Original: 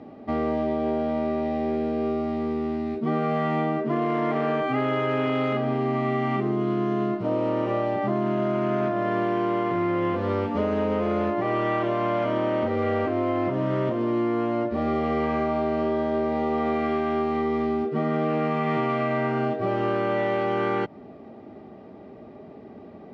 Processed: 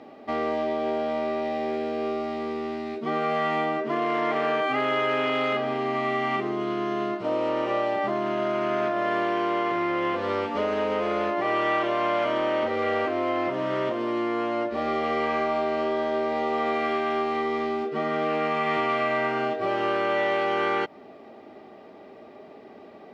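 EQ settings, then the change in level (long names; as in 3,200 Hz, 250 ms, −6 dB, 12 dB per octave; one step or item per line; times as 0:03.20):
bass and treble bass −13 dB, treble −3 dB
high-shelf EQ 2,200 Hz +10.5 dB
0.0 dB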